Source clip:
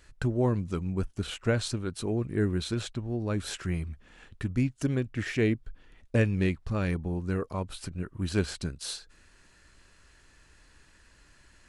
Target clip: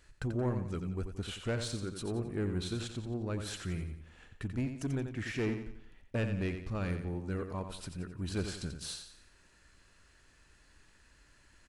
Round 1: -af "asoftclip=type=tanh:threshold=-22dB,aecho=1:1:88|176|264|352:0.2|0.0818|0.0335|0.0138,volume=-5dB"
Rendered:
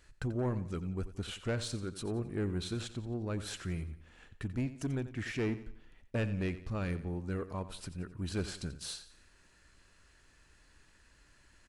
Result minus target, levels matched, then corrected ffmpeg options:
echo-to-direct −6 dB
-af "asoftclip=type=tanh:threshold=-22dB,aecho=1:1:88|176|264|352|440:0.398|0.163|0.0669|0.0274|0.0112,volume=-5dB"

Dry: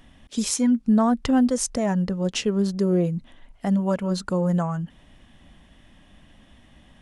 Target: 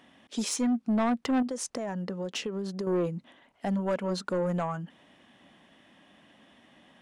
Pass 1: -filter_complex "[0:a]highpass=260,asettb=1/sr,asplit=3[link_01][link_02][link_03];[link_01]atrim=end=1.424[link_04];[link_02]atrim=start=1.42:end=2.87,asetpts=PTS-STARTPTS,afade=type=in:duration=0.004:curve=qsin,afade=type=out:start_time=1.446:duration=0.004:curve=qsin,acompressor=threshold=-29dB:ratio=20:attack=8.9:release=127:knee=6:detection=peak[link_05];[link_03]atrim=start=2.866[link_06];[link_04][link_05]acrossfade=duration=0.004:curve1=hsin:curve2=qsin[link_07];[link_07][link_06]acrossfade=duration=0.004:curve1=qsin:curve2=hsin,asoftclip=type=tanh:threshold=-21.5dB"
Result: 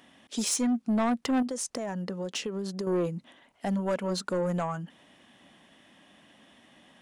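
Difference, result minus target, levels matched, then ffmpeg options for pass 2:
8,000 Hz band +3.5 dB
-filter_complex "[0:a]highpass=260,highshelf=frequency=5400:gain=-8.5,asettb=1/sr,asplit=3[link_01][link_02][link_03];[link_01]atrim=end=1.424[link_04];[link_02]atrim=start=1.42:end=2.87,asetpts=PTS-STARTPTS,afade=type=in:duration=0.004:curve=qsin,afade=type=out:start_time=1.446:duration=0.004:curve=qsin,acompressor=threshold=-29dB:ratio=20:attack=8.9:release=127:knee=6:detection=peak[link_05];[link_03]atrim=start=2.866[link_06];[link_04][link_05]acrossfade=duration=0.004:curve1=hsin:curve2=qsin[link_07];[link_07][link_06]acrossfade=duration=0.004:curve1=qsin:curve2=hsin,asoftclip=type=tanh:threshold=-21.5dB"

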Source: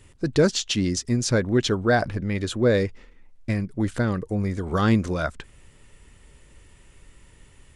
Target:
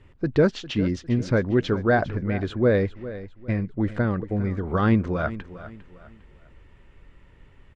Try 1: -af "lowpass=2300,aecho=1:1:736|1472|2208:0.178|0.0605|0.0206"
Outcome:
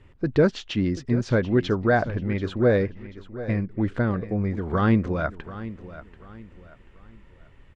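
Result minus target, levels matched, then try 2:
echo 333 ms late
-af "lowpass=2300,aecho=1:1:403|806|1209:0.178|0.0605|0.0206"

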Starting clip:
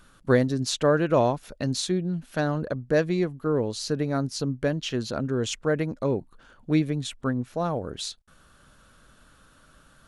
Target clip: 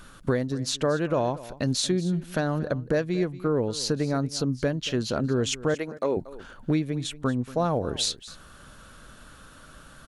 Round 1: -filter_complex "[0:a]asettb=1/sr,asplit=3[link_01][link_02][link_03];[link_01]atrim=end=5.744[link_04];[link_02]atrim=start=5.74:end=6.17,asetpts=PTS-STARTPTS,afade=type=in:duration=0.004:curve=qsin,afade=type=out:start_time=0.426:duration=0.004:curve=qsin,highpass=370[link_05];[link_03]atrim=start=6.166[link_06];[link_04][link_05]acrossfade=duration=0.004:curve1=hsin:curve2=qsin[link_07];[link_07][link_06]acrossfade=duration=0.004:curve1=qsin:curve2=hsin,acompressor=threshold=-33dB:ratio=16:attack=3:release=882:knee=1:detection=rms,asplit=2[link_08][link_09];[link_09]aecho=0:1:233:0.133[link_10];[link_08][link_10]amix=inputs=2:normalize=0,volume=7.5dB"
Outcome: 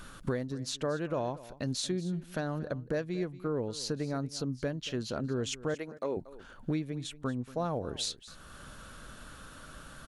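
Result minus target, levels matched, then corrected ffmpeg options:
downward compressor: peak gain reduction +8 dB
-filter_complex "[0:a]asettb=1/sr,asplit=3[link_01][link_02][link_03];[link_01]atrim=end=5.744[link_04];[link_02]atrim=start=5.74:end=6.17,asetpts=PTS-STARTPTS,afade=type=in:duration=0.004:curve=qsin,afade=type=out:start_time=0.426:duration=0.004:curve=qsin,highpass=370[link_05];[link_03]atrim=start=6.166[link_06];[link_04][link_05]acrossfade=duration=0.004:curve1=hsin:curve2=qsin[link_07];[link_07][link_06]acrossfade=duration=0.004:curve1=qsin:curve2=hsin,acompressor=threshold=-24.5dB:ratio=16:attack=3:release=882:knee=1:detection=rms,asplit=2[link_08][link_09];[link_09]aecho=0:1:233:0.133[link_10];[link_08][link_10]amix=inputs=2:normalize=0,volume=7.5dB"

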